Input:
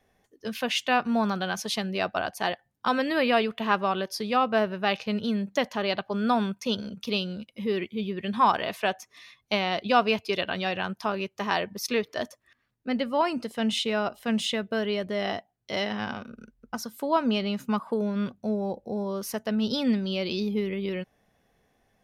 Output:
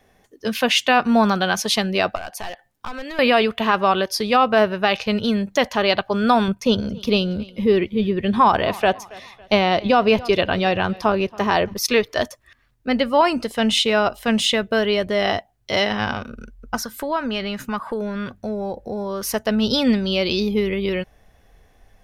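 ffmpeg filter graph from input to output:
-filter_complex "[0:a]asettb=1/sr,asplit=3[a][b][c];[a]atrim=end=2.154[d];[b]atrim=start=2.15:end=3.19,asetpts=PTS-STARTPTS,afade=t=in:d=0.004:c=qsin,afade=t=out:st=1.036:d=0.004:c=qsin,equalizer=f=63:t=o:w=2.9:g=-12,aeval=exprs='clip(val(0),-1,0.0447)':c=same,acompressor=threshold=-38dB:ratio=6:attack=3.2:release=140:knee=1:detection=peak[e];[c]atrim=start=3.186[f];[d][e]acrossfade=d=0.004:c1=hsin:c2=qsin[g];[g][f]acrossfade=d=0.004:c1=qsin:c2=hsin,asettb=1/sr,asplit=3[h][i][j];[h]atrim=end=6.484[k];[i]atrim=start=6.48:end=11.74,asetpts=PTS-STARTPTS,afade=t=in:d=0.004:c=qsin,afade=t=out:st=5.256:d=0.004:c=qsin,tiltshelf=f=820:g=4.5,aecho=1:1:278|556|834:0.0708|0.0297|0.0125,atrim=end_sample=231966[l];[j]atrim=start=11.736[m];[k][l]acrossfade=d=0.004:c1=hsin:c2=qsin[n];[n][m]acrossfade=d=0.004:c1=qsin:c2=hsin,asettb=1/sr,asplit=3[o][p][q];[o]atrim=end=16.774[r];[p]atrim=start=16.77:end=19.24,asetpts=PTS-STARTPTS,afade=t=in:d=0.004:c=qsin,afade=t=out:st=2.466:d=0.004:c=qsin,equalizer=f=1.7k:t=o:w=0.64:g=8.5,acompressor=threshold=-35dB:ratio=2:attack=3.2:release=140:knee=1:detection=peak[s];[q]atrim=start=19.236[t];[r][s]acrossfade=d=0.004:c1=hsin:c2=qsin[u];[u][t]acrossfade=d=0.004:c1=qsin:c2=hsin,asubboost=boost=6.5:cutoff=67,alimiter=level_in=14.5dB:limit=-1dB:release=50:level=0:latency=1,volume=-4.5dB"

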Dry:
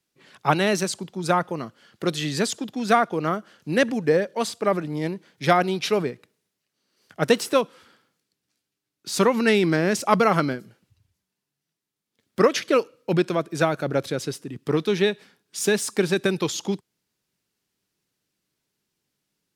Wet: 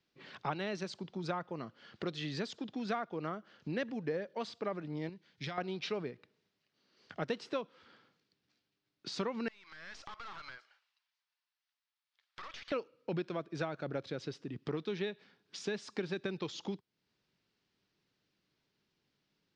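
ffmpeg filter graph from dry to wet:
-filter_complex "[0:a]asettb=1/sr,asplit=3[a][b][c];[a]atrim=end=5.094[d];[b]atrim=start=5.09:end=5.58,asetpts=PTS-STARTPTS,afade=t=in:d=0.004:c=qsin,afade=t=out:st=0.486:d=0.004:c=qsin,equalizer=f=550:w=0.3:g=-10.5,acompressor=threshold=-27dB:ratio=4:attack=3.2:release=140:knee=1:detection=peak[e];[c]atrim=start=5.576[f];[d][e]acrossfade=d=0.004:c1=hsin:c2=qsin[g];[g][f]acrossfade=d=0.004:c1=qsin:c2=hsin,asettb=1/sr,asplit=3[h][i][j];[h]atrim=end=9.484[k];[i]atrim=start=9.48:end=12.72,asetpts=PTS-STARTPTS,afade=t=in:d=0.004:c=qsin,afade=t=out:st=3.236:d=0.004:c=qsin,highpass=f=890:w=0.5412,highpass=f=890:w=1.3066,aeval=exprs='(tanh(35.5*val(0)+0.65)-tanh(0.65))/35.5':c=same,acompressor=threshold=-42dB:ratio=10:attack=3.2:release=140:knee=1:detection=peak[l];[j]atrim=start=12.716[m];[k][l]acrossfade=d=0.004:c1=hsin:c2=qsin[n];[n][m]acrossfade=d=0.004:c1=qsin:c2=hsin,acompressor=threshold=-42dB:ratio=2.5,lowpass=f=5k:w=0.5412,lowpass=f=5k:w=1.3066"

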